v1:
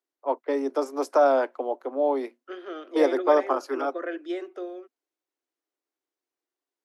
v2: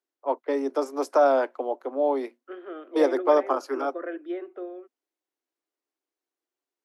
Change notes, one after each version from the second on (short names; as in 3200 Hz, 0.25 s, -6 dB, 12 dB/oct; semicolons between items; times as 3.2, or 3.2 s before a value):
second voice: add air absorption 490 m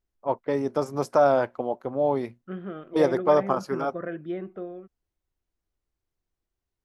master: remove steep high-pass 260 Hz 96 dB/oct